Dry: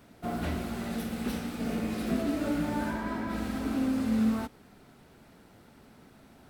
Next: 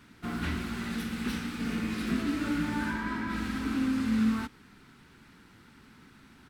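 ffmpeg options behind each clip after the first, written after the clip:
-af "firequalizer=gain_entry='entry(300,0);entry(640,-14);entry(930,0);entry(1500,5);entry(15000,-6)':delay=0.05:min_phase=1"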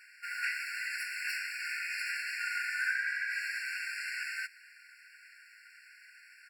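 -af "afftfilt=real='re*eq(mod(floor(b*sr/1024/1400),2),1)':imag='im*eq(mod(floor(b*sr/1024/1400),2),1)':win_size=1024:overlap=0.75,volume=6.5dB"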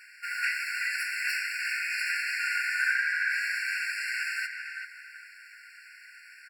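-filter_complex "[0:a]asplit=2[a][b];[b]adelay=388,lowpass=f=2.2k:p=1,volume=-4dB,asplit=2[c][d];[d]adelay=388,lowpass=f=2.2k:p=1,volume=0.4,asplit=2[e][f];[f]adelay=388,lowpass=f=2.2k:p=1,volume=0.4,asplit=2[g][h];[h]adelay=388,lowpass=f=2.2k:p=1,volume=0.4,asplit=2[i][j];[j]adelay=388,lowpass=f=2.2k:p=1,volume=0.4[k];[a][c][e][g][i][k]amix=inputs=6:normalize=0,volume=5dB"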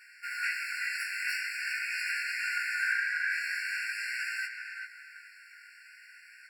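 -af "flanger=delay=16:depth=5.5:speed=0.45"

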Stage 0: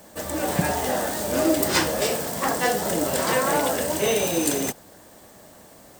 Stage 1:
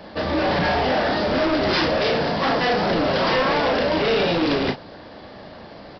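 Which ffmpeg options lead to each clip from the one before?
-filter_complex "[0:a]aresample=11025,volume=28dB,asoftclip=hard,volume=-28dB,aresample=44100,asplit=2[a][b];[b]adelay=35,volume=-7.5dB[c];[a][c]amix=inputs=2:normalize=0,volume=9dB"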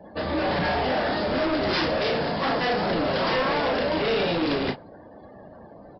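-af "afftdn=nr=27:nf=-41,volume=-4dB"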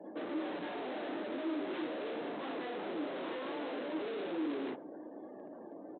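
-af "lowpass=f=1.4k:p=1,aresample=8000,asoftclip=type=hard:threshold=-36dB,aresample=44100,highpass=f=310:t=q:w=3.4,volume=-6.5dB"

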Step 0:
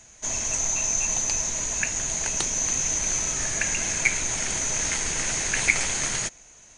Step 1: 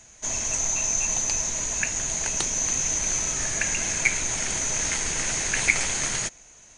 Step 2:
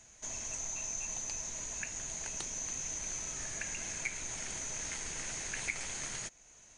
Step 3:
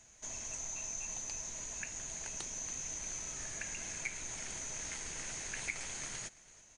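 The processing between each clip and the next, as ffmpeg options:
-af anull
-af "acompressor=threshold=-40dB:ratio=1.5,volume=-7.5dB"
-af "aecho=1:1:332:0.1,volume=-2.5dB"

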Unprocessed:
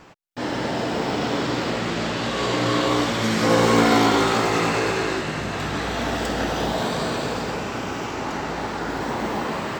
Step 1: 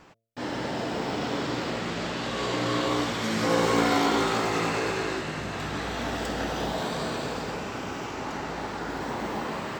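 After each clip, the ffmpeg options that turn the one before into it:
-af "bandreject=f=113.4:t=h:w=4,bandreject=f=226.8:t=h:w=4,bandreject=f=340.2:t=h:w=4,bandreject=f=453.6:t=h:w=4,bandreject=f=567:t=h:w=4,bandreject=f=680.4:t=h:w=4,volume=-5.5dB"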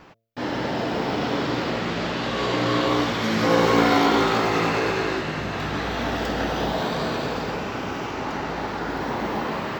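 -af "equalizer=f=8.7k:w=1.7:g=-14,volume=5dB"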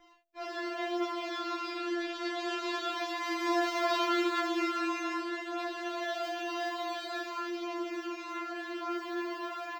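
-af "aecho=1:1:40|69:0.562|0.422,flanger=delay=15.5:depth=2.7:speed=0.3,afftfilt=real='re*4*eq(mod(b,16),0)':imag='im*4*eq(mod(b,16),0)':win_size=2048:overlap=0.75,volume=-5.5dB"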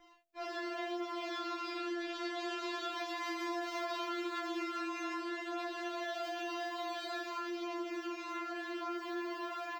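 -af "acompressor=threshold=-34dB:ratio=6,volume=-1.5dB"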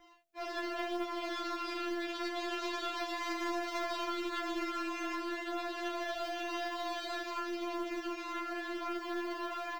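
-af "acrusher=bits=8:mode=log:mix=0:aa=0.000001,aeval=exprs='0.0398*(cos(1*acos(clip(val(0)/0.0398,-1,1)))-cos(1*PI/2))+0.0126*(cos(2*acos(clip(val(0)/0.0398,-1,1)))-cos(2*PI/2))':c=same,volume=1.5dB"

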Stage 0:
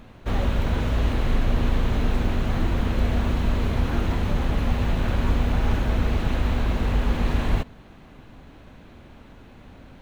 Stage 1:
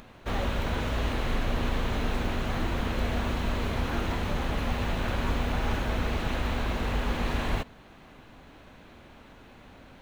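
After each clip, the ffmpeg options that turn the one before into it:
-af "lowshelf=f=330:g=-8,acompressor=mode=upward:threshold=-48dB:ratio=2.5"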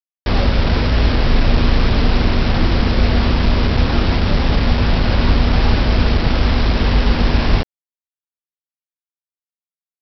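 -af "lowshelf=f=460:g=9,aresample=11025,acrusher=bits=4:mix=0:aa=0.000001,aresample=44100,volume=6.5dB"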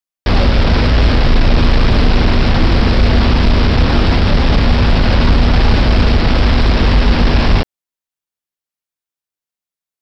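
-af "acontrast=74,volume=-1dB"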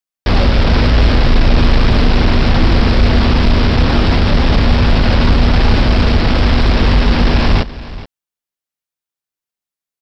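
-af "aecho=1:1:425:0.15"

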